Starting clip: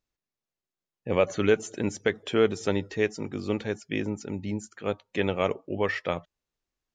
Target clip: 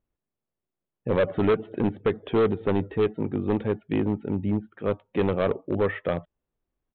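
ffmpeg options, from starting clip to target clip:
-af "tiltshelf=f=1.5k:g=8.5,aresample=8000,volume=15.5dB,asoftclip=hard,volume=-15.5dB,aresample=44100,volume=-1.5dB"

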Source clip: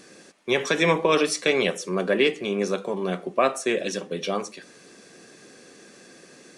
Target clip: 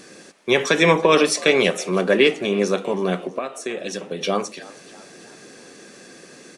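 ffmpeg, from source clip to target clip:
-filter_complex "[0:a]asettb=1/sr,asplit=3[a][b][c];[a]atrim=end=3.194[d];[b]atrim=start=3.19:end=4.21,asetpts=PTS-STARTPTS,afade=t=in:d=0.004:c=qsin,afade=t=out:st=1.016:d=0.004:c=qsin,acompressor=threshold=-29dB:ratio=12[e];[c]atrim=start=4.206[f];[d][e]acrossfade=d=0.004:c1=hsin:c2=qsin[g];[g][f]acrossfade=d=0.004:c1=qsin:c2=hsin,asplit=5[h][i][j][k][l];[i]adelay=324,afreqshift=74,volume=-20.5dB[m];[j]adelay=648,afreqshift=148,volume=-26.3dB[n];[k]adelay=972,afreqshift=222,volume=-32.2dB[o];[l]adelay=1296,afreqshift=296,volume=-38dB[p];[h][m][n][o][p]amix=inputs=5:normalize=0,volume=5dB"

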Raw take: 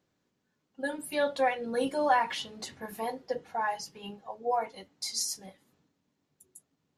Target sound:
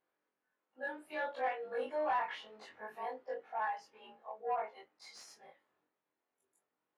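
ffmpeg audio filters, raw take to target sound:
-filter_complex "[0:a]afftfilt=real='re':imag='-im':win_size=2048:overlap=0.75,asplit=2[a][b];[b]highpass=f=720:p=1,volume=15dB,asoftclip=type=tanh:threshold=-18dB[c];[a][c]amix=inputs=2:normalize=0,lowpass=f=3.6k:p=1,volume=-6dB,acrossover=split=310 2500:gain=0.224 1 0.158[d][e][f];[d][e][f]amix=inputs=3:normalize=0,volume=-7dB"

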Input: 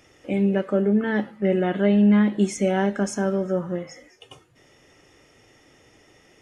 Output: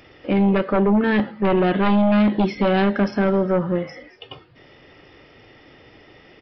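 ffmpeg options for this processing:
-af "aeval=exprs='0.376*sin(PI/2*2.51*val(0)/0.376)':c=same,aresample=11025,aresample=44100,volume=-4.5dB"

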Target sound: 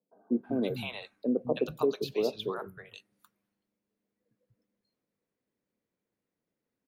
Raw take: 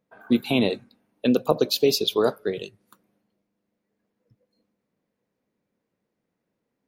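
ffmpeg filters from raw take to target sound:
-filter_complex "[0:a]asettb=1/sr,asplit=3[a][b][c];[a]atrim=end=2.224[d];[b]atrim=start=2.22:end=2.62,asetpts=PTS-STARTPTS,afade=t=in:d=0.004:c=qsin,afade=t=out:st=0.396:d=0.004:c=qsin,asuperstop=centerf=4900:order=4:qfactor=0.57[e];[c]atrim=start=2.616[f];[d][e]acrossfade=d=0.004:c1=hsin:c2=qsin[g];[g][f]acrossfade=d=0.004:c1=qsin:c2=hsin,acrossover=split=170|780[h][i][j];[h]adelay=190[k];[j]adelay=320[l];[k][i][l]amix=inputs=3:normalize=0,acrossover=split=630|2600[m][n][o];[o]acompressor=threshold=-40dB:ratio=6[p];[m][n][p]amix=inputs=3:normalize=0,volume=-6.5dB"

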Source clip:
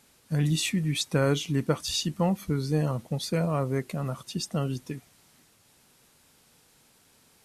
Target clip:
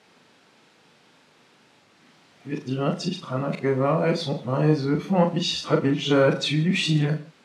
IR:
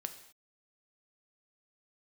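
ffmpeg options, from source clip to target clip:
-filter_complex "[0:a]areverse,asoftclip=type=tanh:threshold=-14dB,highpass=180,lowpass=3.6k,asplit=2[a][b];[1:a]atrim=start_sample=2205,afade=t=out:st=0.2:d=0.01,atrim=end_sample=9261,adelay=39[c];[b][c]afir=irnorm=-1:irlink=0,volume=-3dB[d];[a][d]amix=inputs=2:normalize=0,volume=7dB"

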